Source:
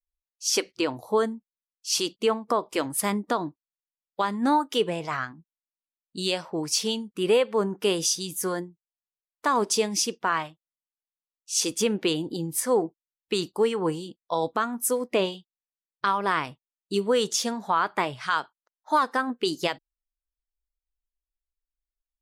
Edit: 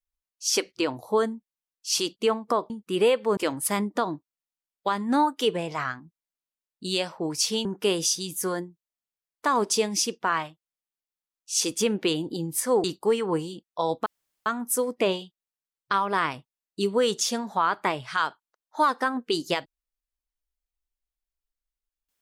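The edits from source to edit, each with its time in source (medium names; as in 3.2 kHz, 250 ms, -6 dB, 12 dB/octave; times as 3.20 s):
6.98–7.65 s: move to 2.70 s
12.84–13.37 s: delete
14.59 s: insert room tone 0.40 s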